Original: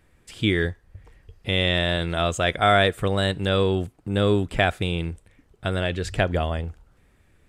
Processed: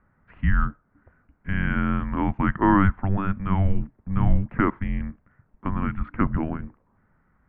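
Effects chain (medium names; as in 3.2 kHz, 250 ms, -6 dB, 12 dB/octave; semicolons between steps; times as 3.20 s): mistuned SSB -390 Hz 170–2200 Hz; bass shelf 75 Hz +7 dB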